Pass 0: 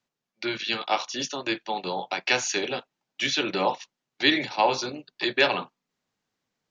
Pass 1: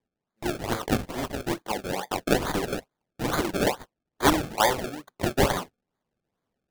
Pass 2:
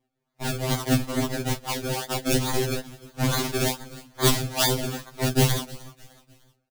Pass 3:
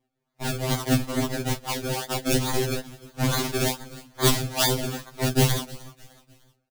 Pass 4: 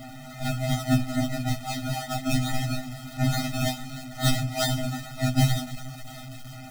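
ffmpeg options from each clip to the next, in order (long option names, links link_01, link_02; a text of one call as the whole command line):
ffmpeg -i in.wav -af "acrusher=samples=31:mix=1:aa=0.000001:lfo=1:lforange=31:lforate=2.3" out.wav
ffmpeg -i in.wav -filter_complex "[0:a]acrossover=split=250|3000[link_01][link_02][link_03];[link_02]acompressor=threshold=-36dB:ratio=3[link_04];[link_01][link_04][link_03]amix=inputs=3:normalize=0,asplit=4[link_05][link_06][link_07][link_08];[link_06]adelay=304,afreqshift=-44,volume=-20dB[link_09];[link_07]adelay=608,afreqshift=-88,volume=-27.5dB[link_10];[link_08]adelay=912,afreqshift=-132,volume=-35.1dB[link_11];[link_05][link_09][link_10][link_11]amix=inputs=4:normalize=0,afftfilt=real='re*2.45*eq(mod(b,6),0)':imag='im*2.45*eq(mod(b,6),0)':win_size=2048:overlap=0.75,volume=9dB" out.wav
ffmpeg -i in.wav -af anull out.wav
ffmpeg -i in.wav -af "aeval=exprs='val(0)+0.5*0.0237*sgn(val(0))':channel_layout=same,highshelf=frequency=6800:gain=-6.5,afftfilt=real='re*eq(mod(floor(b*sr/1024/300),2),0)':imag='im*eq(mod(floor(b*sr/1024/300),2),0)':win_size=1024:overlap=0.75" out.wav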